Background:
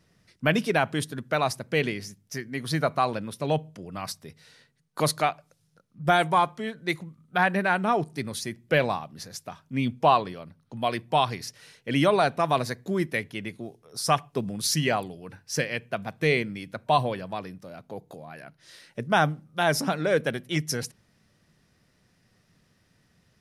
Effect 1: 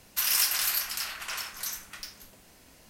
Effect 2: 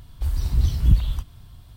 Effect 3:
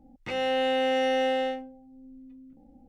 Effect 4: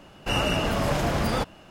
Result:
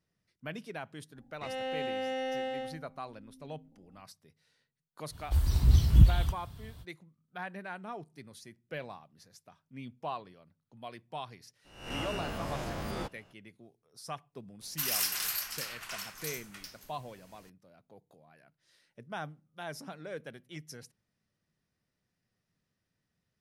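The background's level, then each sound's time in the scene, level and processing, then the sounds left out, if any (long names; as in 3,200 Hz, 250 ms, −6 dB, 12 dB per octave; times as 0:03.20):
background −18 dB
0:01.15: mix in 3 −9.5 dB
0:05.10: mix in 2 −0.5 dB, fades 0.05 s + high-pass filter 50 Hz
0:11.64: mix in 4 −14.5 dB, fades 0.02 s + peak hold with a rise ahead of every peak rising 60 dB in 0.64 s
0:14.61: mix in 1 −6 dB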